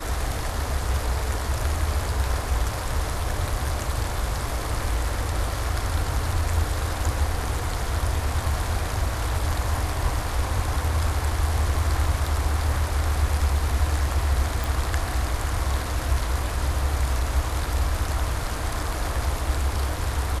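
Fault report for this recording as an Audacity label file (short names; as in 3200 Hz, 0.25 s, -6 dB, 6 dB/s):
14.640000	14.640000	pop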